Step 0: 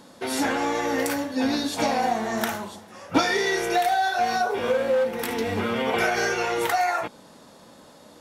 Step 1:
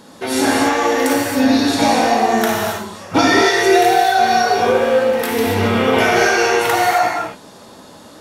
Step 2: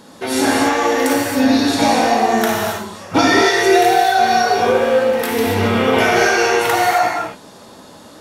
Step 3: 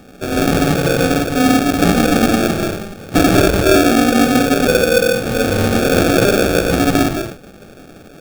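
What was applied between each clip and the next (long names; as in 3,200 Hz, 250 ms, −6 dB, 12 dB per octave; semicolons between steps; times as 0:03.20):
reverb whose tail is shaped and stops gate 300 ms flat, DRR −2.5 dB; level +5 dB
no processing that can be heard
sample-rate reduction 1,000 Hz, jitter 0%; level +1 dB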